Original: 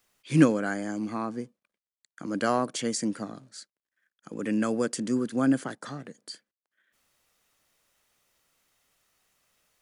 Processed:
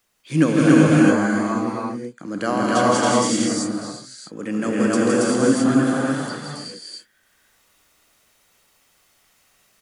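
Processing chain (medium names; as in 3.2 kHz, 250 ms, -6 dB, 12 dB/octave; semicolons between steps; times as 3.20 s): on a send: loudspeakers at several distances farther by 56 m -5 dB, 95 m 0 dB; on the sum: gated-style reverb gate 410 ms rising, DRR -4.5 dB; trim +1.5 dB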